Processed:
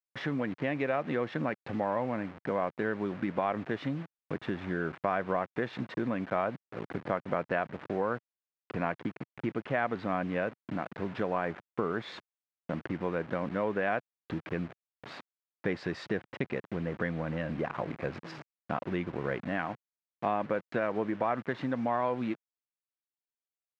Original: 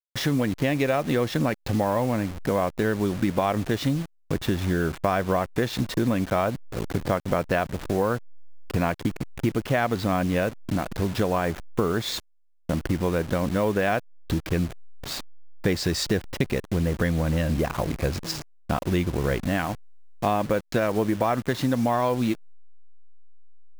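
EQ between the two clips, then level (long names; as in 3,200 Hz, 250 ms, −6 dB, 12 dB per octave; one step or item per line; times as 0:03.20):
Chebyshev band-pass filter 140–2,000 Hz, order 2
low-shelf EQ 240 Hz −8 dB
−4.5 dB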